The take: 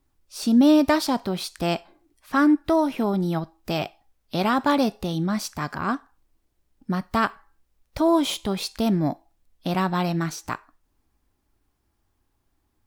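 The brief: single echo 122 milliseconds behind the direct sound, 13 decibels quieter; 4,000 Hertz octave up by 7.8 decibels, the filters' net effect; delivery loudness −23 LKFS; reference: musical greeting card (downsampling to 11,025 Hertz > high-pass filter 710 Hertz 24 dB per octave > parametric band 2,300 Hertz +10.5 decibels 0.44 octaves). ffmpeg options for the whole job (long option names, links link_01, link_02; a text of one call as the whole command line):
ffmpeg -i in.wav -af "equalizer=frequency=4000:width_type=o:gain=8,aecho=1:1:122:0.224,aresample=11025,aresample=44100,highpass=frequency=710:width=0.5412,highpass=frequency=710:width=1.3066,equalizer=frequency=2300:width_type=o:width=0.44:gain=10.5,volume=3dB" out.wav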